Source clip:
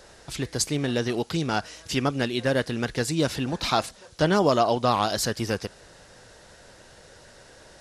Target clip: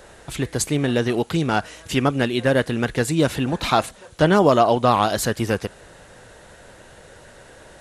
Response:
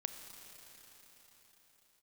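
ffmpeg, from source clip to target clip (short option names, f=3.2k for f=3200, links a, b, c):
-af "equalizer=f=5.1k:t=o:w=0.67:g=-10,volume=5.5dB"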